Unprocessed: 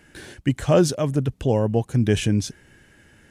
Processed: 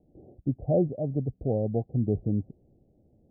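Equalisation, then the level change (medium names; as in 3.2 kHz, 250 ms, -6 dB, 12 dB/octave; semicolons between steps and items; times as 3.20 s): Chebyshev low-pass 750 Hz, order 6; -6.5 dB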